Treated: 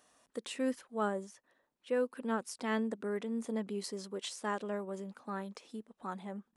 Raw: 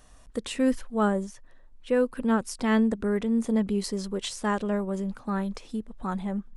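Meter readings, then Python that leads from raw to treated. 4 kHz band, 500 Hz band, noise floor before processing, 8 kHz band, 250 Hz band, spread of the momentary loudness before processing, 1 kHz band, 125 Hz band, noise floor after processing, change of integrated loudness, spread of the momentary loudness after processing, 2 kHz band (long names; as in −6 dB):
−7.5 dB, −8.0 dB, −52 dBFS, −7.5 dB, −12.5 dB, 9 LU, −7.5 dB, below −10 dB, −81 dBFS, −10.0 dB, 10 LU, −7.5 dB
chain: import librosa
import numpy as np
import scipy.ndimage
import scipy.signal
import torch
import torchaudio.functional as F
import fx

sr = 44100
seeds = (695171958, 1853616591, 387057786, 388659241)

y = scipy.signal.sosfilt(scipy.signal.butter(2, 270.0, 'highpass', fs=sr, output='sos'), x)
y = y * 10.0 ** (-7.5 / 20.0)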